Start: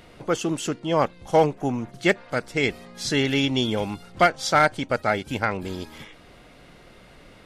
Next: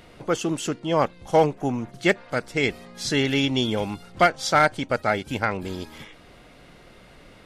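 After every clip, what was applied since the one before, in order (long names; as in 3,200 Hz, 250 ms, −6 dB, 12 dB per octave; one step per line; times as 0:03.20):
no processing that can be heard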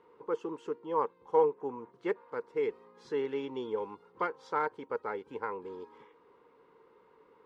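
pair of resonant band-passes 660 Hz, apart 1.1 octaves
level −1 dB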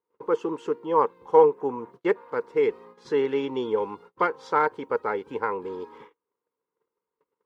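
noise gate −56 dBFS, range −34 dB
level +9 dB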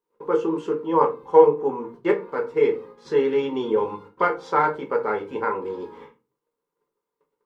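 rectangular room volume 120 cubic metres, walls furnished, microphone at 1.2 metres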